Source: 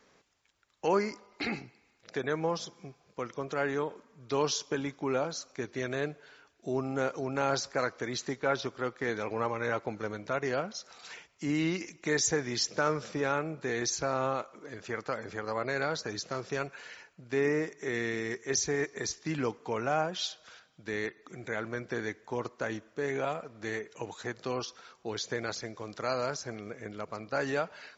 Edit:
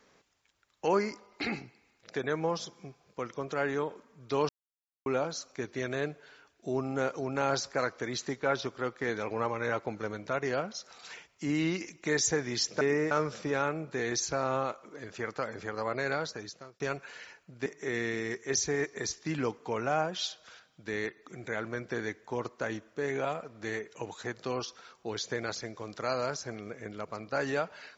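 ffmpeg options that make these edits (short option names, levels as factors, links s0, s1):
-filter_complex "[0:a]asplit=7[s0][s1][s2][s3][s4][s5][s6];[s0]atrim=end=4.49,asetpts=PTS-STARTPTS,afade=t=out:st=4.486:d=0.004:c=hsin[s7];[s1]atrim=start=4.49:end=5.06,asetpts=PTS-STARTPTS,volume=0[s8];[s2]atrim=start=5.06:end=12.812,asetpts=PTS-STARTPTS,afade=t=in:d=0.004:c=hsin[s9];[s3]atrim=start=17.358:end=17.662[s10];[s4]atrim=start=12.808:end=16.5,asetpts=PTS-STARTPTS,afade=t=out:st=3.012:d=0.68[s11];[s5]atrim=start=16.5:end=17.362,asetpts=PTS-STARTPTS,afade=t=in:d=0.004:c=hsin[s12];[s6]atrim=start=17.658[s13];[s7][s8][s9]concat=n=3:v=0:a=1[s14];[s14][s10]acrossfade=d=0.004:c1=hsin:c2=hsin[s15];[s11][s12]concat=n=2:v=0:a=1[s16];[s15][s16]acrossfade=d=0.004:c1=hsin:c2=hsin[s17];[s17][s13]acrossfade=d=0.004:c1=hsin:c2=hsin"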